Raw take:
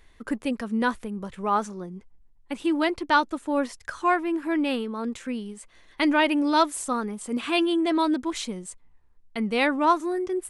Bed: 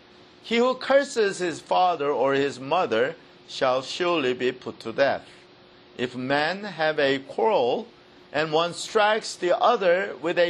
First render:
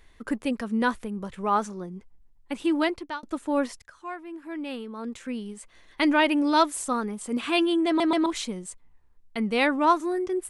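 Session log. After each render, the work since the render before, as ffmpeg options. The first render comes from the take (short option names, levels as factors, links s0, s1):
-filter_complex "[0:a]asplit=6[s0][s1][s2][s3][s4][s5];[s0]atrim=end=3.23,asetpts=PTS-STARTPTS,afade=t=out:st=2.82:d=0.41[s6];[s1]atrim=start=3.23:end=3.82,asetpts=PTS-STARTPTS,afade=t=in:d=0.004:c=hsin,afade=t=out:st=0.586:d=0.004:c=hsin:silence=0.16788[s7];[s2]atrim=start=3.82:end=8.002,asetpts=PTS-STARTPTS,afade=t=in:d=1.71:c=qua:silence=0.16788[s8];[s3]atrim=start=7.868:end=8.002[s9];[s4]atrim=start=7.868:end=8.002[s10];[s5]atrim=start=8.258[s11];[s6][s7][s8]concat=n=3:v=0:a=1[s12];[s12][s9]acrossfade=d=0.004:c1=hsin:c2=hsin[s13];[s13][s10]acrossfade=d=0.004:c1=hsin:c2=hsin[s14];[s14][s11]acrossfade=d=0.004:c1=hsin:c2=hsin"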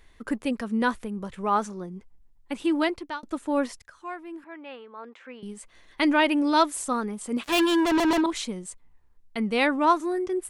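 -filter_complex "[0:a]asettb=1/sr,asplit=3[s0][s1][s2];[s0]atrim=end=4.444[s3];[s1]atrim=start=4.44:end=5.43,asetpts=PTS-STARTPTS,afade=t=in:d=0.004:c=qsin,afade=t=out:st=0.986:d=0.004:c=qsin,highpass=560,lowpass=2300[s4];[s2]atrim=start=5.426[s5];[s3][s4]acrossfade=d=0.004:c1=hsin:c2=qsin[s6];[s6][s5]acrossfade=d=0.004:c1=qsin:c2=hsin,asplit=3[s7][s8][s9];[s7]afade=t=out:st=7.42:d=0.02[s10];[s8]acrusher=bits=3:mix=0:aa=0.5,afade=t=in:st=7.42:d=0.02,afade=t=out:st=8.2:d=0.02[s11];[s9]afade=t=in:st=8.2:d=0.02[s12];[s10][s11][s12]amix=inputs=3:normalize=0"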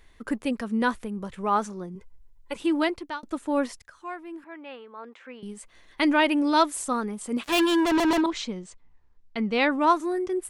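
-filter_complex "[0:a]asettb=1/sr,asplit=3[s0][s1][s2];[s0]atrim=end=1.954[s3];[s1]atrim=start=1.95:end=2.56,asetpts=PTS-STARTPTS,afade=t=in:d=0.004:c=qsin,afade=t=out:st=0.606:d=0.004:c=qsin,aecho=1:1:2:0.77,atrim=end_sample=26901[s4];[s2]atrim=start=2.556[s5];[s3][s4]acrossfade=d=0.004:c1=hsin:c2=qsin[s6];[s6][s5]acrossfade=d=0.004:c1=qsin:c2=hsin,asettb=1/sr,asplit=3[s7][s8][s9];[s7]atrim=end=8.294[s10];[s8]atrim=start=8.29:end=9.71,asetpts=PTS-STARTPTS,afade=t=in:d=0.004:c=qsin,afade=t=out:st=1.416:d=0.004:c=qsin,lowpass=f=6400:w=0.5412,lowpass=f=6400:w=1.3066[s11];[s9]atrim=start=9.706[s12];[s10][s11]acrossfade=d=0.004:c1=hsin:c2=qsin[s13];[s13][s12]acrossfade=d=0.004:c1=qsin:c2=hsin"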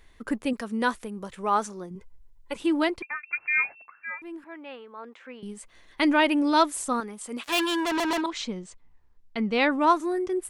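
-filter_complex "[0:a]asettb=1/sr,asplit=3[s0][s1][s2];[s0]atrim=end=0.534[s3];[s1]atrim=start=0.53:end=1.91,asetpts=PTS-STARTPTS,afade=t=in:d=0.004:c=qsin,afade=t=out:st=1.376:d=0.004:c=qsin,bass=f=250:g=-6,treble=f=4000:g=4[s4];[s2]atrim=start=1.906[s5];[s3][s4]acrossfade=d=0.004:c1=hsin:c2=qsin[s6];[s6][s5]acrossfade=d=0.004:c1=qsin:c2=hsin,asettb=1/sr,asplit=3[s7][s8][s9];[s7]atrim=end=3.024[s10];[s8]atrim=start=3.02:end=4.22,asetpts=PTS-STARTPTS,afade=t=in:d=0.004:c=qsin,afade=t=out:st=1.196:d=0.004:c=qsin,lowpass=f=2300:t=q:w=0.5098,lowpass=f=2300:t=q:w=0.6013,lowpass=f=2300:t=q:w=0.9,lowpass=f=2300:t=q:w=2.563,afreqshift=-2700[s11];[s9]atrim=start=4.216[s12];[s10][s11]acrossfade=d=0.004:c1=hsin:c2=qsin[s13];[s13][s12]acrossfade=d=0.004:c1=qsin:c2=hsin,asettb=1/sr,asplit=3[s14][s15][s16];[s14]atrim=end=7.004[s17];[s15]atrim=start=7:end=8.41,asetpts=PTS-STARTPTS,afade=t=in:d=0.004:c=qsin,afade=t=out:st=1.406:d=0.004:c=qsin,lowshelf=f=390:g=-10.5[s18];[s16]atrim=start=8.406[s19];[s17][s18]acrossfade=d=0.004:c1=hsin:c2=qsin[s20];[s20][s19]acrossfade=d=0.004:c1=qsin:c2=hsin"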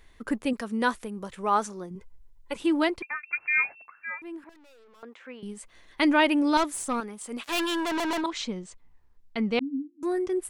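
-filter_complex "[0:a]asettb=1/sr,asplit=3[s0][s1][s2];[s0]atrim=end=4.494[s3];[s1]atrim=start=4.49:end=5.03,asetpts=PTS-STARTPTS,afade=t=in:d=0.004:c=qsin,afade=t=out:st=0.536:d=0.004:c=qsin,aeval=exprs='(tanh(562*val(0)+0.55)-tanh(0.55))/562':c=same[s4];[s2]atrim=start=5.026[s5];[s3][s4]acrossfade=d=0.004:c1=hsin:c2=qsin[s6];[s6][s5]acrossfade=d=0.004:c1=qsin:c2=hsin,asettb=1/sr,asplit=3[s7][s8][s9];[s7]atrim=end=6.574[s10];[s8]atrim=start=6.57:end=8.24,asetpts=PTS-STARTPTS,afade=t=in:d=0.004:c=qsin,afade=t=out:st=1.666:d=0.004:c=qsin,aeval=exprs='(tanh(10*val(0)+0.3)-tanh(0.3))/10':c=same[s11];[s9]atrim=start=8.236[s12];[s10][s11]acrossfade=d=0.004:c1=hsin:c2=qsin[s13];[s13][s12]acrossfade=d=0.004:c1=qsin:c2=hsin,asettb=1/sr,asplit=3[s14][s15][s16];[s14]atrim=end=9.594[s17];[s15]atrim=start=9.59:end=10.03,asetpts=PTS-STARTPTS,afade=t=in:d=0.004:c=qsin,afade=t=out:st=0.436:d=0.004:c=qsin,asuperpass=centerf=260:order=8:qfactor=5.5[s18];[s16]atrim=start=10.026[s19];[s17][s18]acrossfade=d=0.004:c1=hsin:c2=qsin[s20];[s20][s19]acrossfade=d=0.004:c1=qsin:c2=hsin"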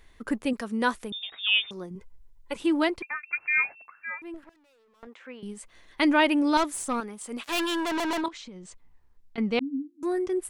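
-filter_complex "[0:a]asettb=1/sr,asplit=3[s0][s1][s2];[s0]atrim=end=1.124[s3];[s1]atrim=start=1.12:end=1.71,asetpts=PTS-STARTPTS,afade=t=in:d=0.004:c=qsin,afade=t=out:st=0.586:d=0.004:c=qsin,lowpass=f=3200:t=q:w=0.5098,lowpass=f=3200:t=q:w=0.6013,lowpass=f=3200:t=q:w=0.9,lowpass=f=3200:t=q:w=2.563,afreqshift=-3800[s4];[s2]atrim=start=1.706[s5];[s3][s4]acrossfade=d=0.004:c1=hsin:c2=qsin[s6];[s6][s5]acrossfade=d=0.004:c1=qsin:c2=hsin,asettb=1/sr,asplit=3[s7][s8][s9];[s7]atrim=end=4.344[s10];[s8]atrim=start=4.34:end=5.07,asetpts=PTS-STARTPTS,afade=t=in:d=0.004:c=qsin,afade=t=out:st=0.726:d=0.004:c=qsin,aeval=exprs='if(lt(val(0),0),0.251*val(0),val(0))':c=same[s11];[s9]atrim=start=5.066[s12];[s10][s11]acrossfade=d=0.004:c1=hsin:c2=qsin[s13];[s13][s12]acrossfade=d=0.004:c1=qsin:c2=hsin,asettb=1/sr,asplit=3[s14][s15][s16];[s14]atrim=end=8.284[s17];[s15]atrim=start=8.28:end=9.38,asetpts=PTS-STARTPTS,afade=t=in:d=0.004:c=qsin,afade=t=out:st=1.096:d=0.004:c=qsin,acompressor=threshold=0.0112:ratio=10:attack=3.2:release=140:knee=1:detection=peak[s18];[s16]atrim=start=9.376[s19];[s17][s18]acrossfade=d=0.004:c1=hsin:c2=qsin[s20];[s20][s19]acrossfade=d=0.004:c1=qsin:c2=hsin"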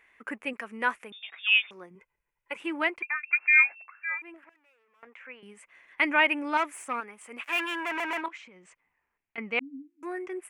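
-af "highpass=f=980:p=1,highshelf=f=3100:t=q:w=3:g=-9"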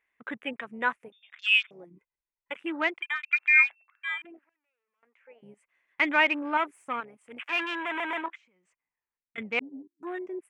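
-af "afwtdn=0.01"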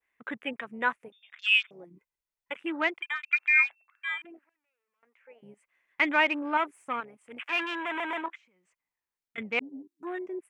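-af "adynamicequalizer=threshold=0.0158:dfrequency=2100:dqfactor=1.1:tfrequency=2100:tqfactor=1.1:attack=5:release=100:ratio=0.375:range=3:mode=cutabove:tftype=bell"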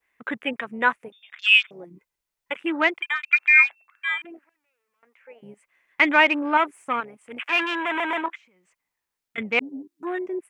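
-af "volume=2.24"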